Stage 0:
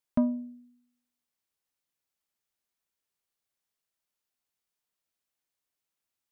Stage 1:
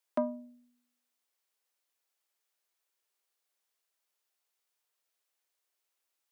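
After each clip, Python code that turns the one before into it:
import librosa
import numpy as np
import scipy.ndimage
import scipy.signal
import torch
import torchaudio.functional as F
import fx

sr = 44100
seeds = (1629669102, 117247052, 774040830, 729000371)

y = scipy.signal.sosfilt(scipy.signal.butter(4, 360.0, 'highpass', fs=sr, output='sos'), x)
y = y * 10.0 ** (3.5 / 20.0)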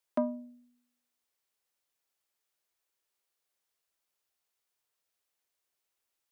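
y = fx.low_shelf(x, sr, hz=210.0, db=8.5)
y = y * 10.0 ** (-1.0 / 20.0)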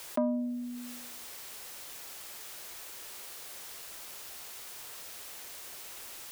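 y = fx.env_flatten(x, sr, amount_pct=70)
y = y * 10.0 ** (-1.0 / 20.0)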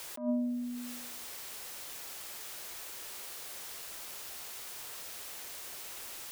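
y = fx.attack_slew(x, sr, db_per_s=140.0)
y = y * 10.0 ** (1.0 / 20.0)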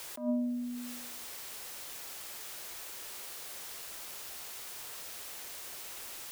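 y = fx.quant_dither(x, sr, seeds[0], bits=12, dither='triangular')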